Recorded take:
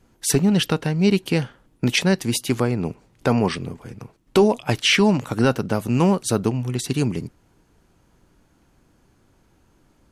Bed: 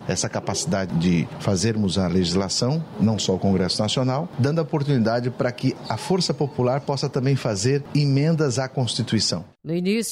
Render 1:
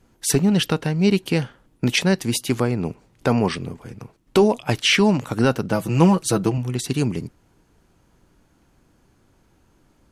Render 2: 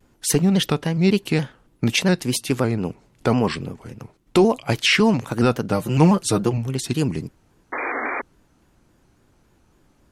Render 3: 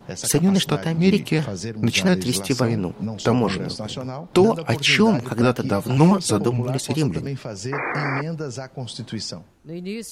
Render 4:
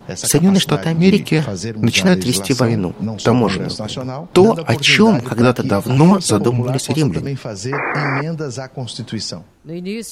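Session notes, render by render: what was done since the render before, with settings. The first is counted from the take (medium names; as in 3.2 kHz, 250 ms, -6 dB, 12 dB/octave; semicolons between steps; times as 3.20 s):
5.72–6.58 s: comb 6.1 ms, depth 67%
7.72–8.22 s: painted sound noise 240–2300 Hz -26 dBFS; vibrato with a chosen wave square 3.6 Hz, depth 100 cents
add bed -8.5 dB
trim +5.5 dB; peak limiter -1 dBFS, peak gain reduction 2.5 dB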